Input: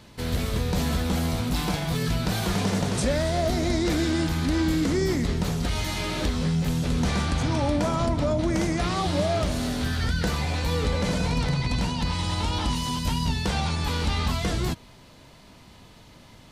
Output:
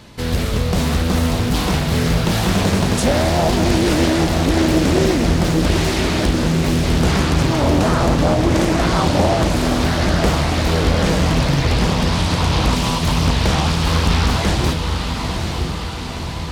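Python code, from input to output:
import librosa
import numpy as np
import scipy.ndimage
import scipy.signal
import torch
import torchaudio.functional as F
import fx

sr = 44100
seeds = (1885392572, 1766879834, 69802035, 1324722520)

y = fx.echo_diffused(x, sr, ms=909, feedback_pct=65, wet_db=-5.5)
y = fx.doppler_dist(y, sr, depth_ms=0.84)
y = y * librosa.db_to_amplitude(7.5)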